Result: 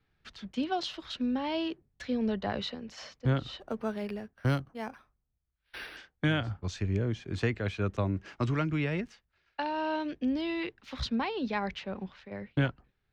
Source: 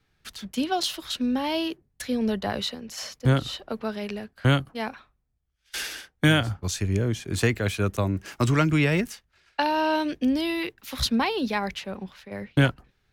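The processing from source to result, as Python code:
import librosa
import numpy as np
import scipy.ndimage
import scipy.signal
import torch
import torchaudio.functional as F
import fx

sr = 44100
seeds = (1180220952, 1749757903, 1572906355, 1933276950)

y = fx.rider(x, sr, range_db=3, speed_s=0.5)
y = fx.air_absorb(y, sr, metres=160.0)
y = fx.resample_linear(y, sr, factor=6, at=(3.6, 5.97))
y = F.gain(torch.from_numpy(y), -5.5).numpy()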